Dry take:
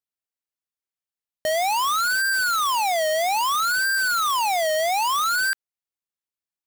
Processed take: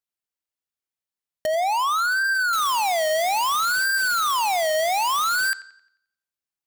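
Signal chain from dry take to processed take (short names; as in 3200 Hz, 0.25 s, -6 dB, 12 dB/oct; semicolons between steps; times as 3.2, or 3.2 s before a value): 1.46–2.53 formant sharpening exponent 2; analogue delay 88 ms, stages 4096, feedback 41%, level -17 dB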